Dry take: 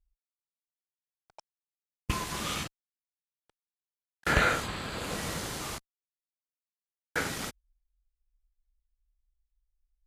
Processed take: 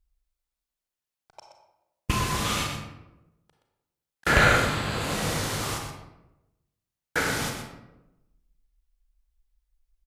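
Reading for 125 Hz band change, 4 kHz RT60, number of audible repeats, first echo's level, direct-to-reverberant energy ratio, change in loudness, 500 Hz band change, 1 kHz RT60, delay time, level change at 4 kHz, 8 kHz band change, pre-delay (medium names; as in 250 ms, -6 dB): +8.5 dB, 0.55 s, 1, -9.0 dB, 1.5 dB, +6.5 dB, +7.0 dB, 0.90 s, 123 ms, +6.5 dB, +6.0 dB, 32 ms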